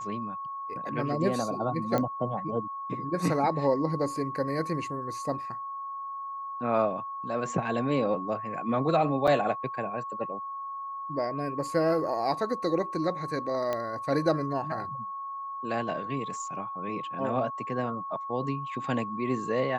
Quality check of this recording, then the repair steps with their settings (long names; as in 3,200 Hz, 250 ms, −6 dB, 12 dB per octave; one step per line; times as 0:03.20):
whistle 1,100 Hz −34 dBFS
0:01.98: click −15 dBFS
0:09.27–0:09.28: drop-out 6.4 ms
0:13.73: click −17 dBFS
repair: click removal
notch filter 1,100 Hz, Q 30
repair the gap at 0:09.27, 6.4 ms